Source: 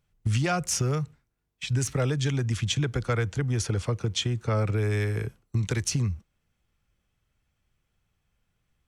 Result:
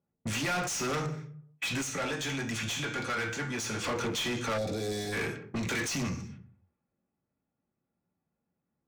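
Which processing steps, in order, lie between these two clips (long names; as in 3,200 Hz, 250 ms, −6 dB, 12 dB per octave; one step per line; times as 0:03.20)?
noise gate −57 dBFS, range −14 dB
convolution reverb RT60 0.45 s, pre-delay 3 ms, DRR 3 dB
low-pass that shuts in the quiet parts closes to 460 Hz, open at −32.5 dBFS
downward compressor 1.5 to 1, threshold −48 dBFS, peak gain reduction 9.5 dB
0:01.81–0:03.84: tuned comb filter 110 Hz, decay 0.4 s, harmonics all, mix 70%
mid-hump overdrive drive 33 dB, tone 4,100 Hz, clips at −21 dBFS
0:04.58–0:05.13: gain on a spectral selection 810–3,300 Hz −15 dB
level −2.5 dB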